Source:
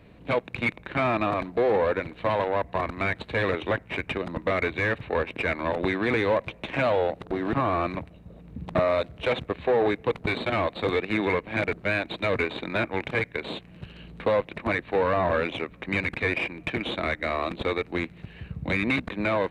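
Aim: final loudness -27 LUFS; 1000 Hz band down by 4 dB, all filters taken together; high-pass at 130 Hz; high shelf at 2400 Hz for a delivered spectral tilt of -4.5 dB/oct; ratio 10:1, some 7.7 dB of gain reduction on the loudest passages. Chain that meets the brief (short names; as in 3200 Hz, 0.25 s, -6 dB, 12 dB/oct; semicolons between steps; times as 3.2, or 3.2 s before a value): HPF 130 Hz; bell 1000 Hz -3.5 dB; high shelf 2400 Hz -9 dB; compressor 10:1, threshold -28 dBFS; gain +7 dB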